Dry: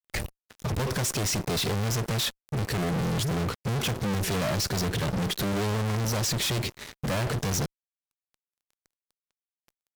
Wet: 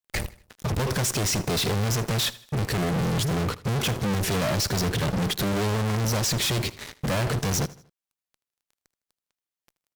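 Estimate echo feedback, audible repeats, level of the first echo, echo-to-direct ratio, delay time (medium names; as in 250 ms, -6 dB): 41%, 3, -19.0 dB, -18.0 dB, 79 ms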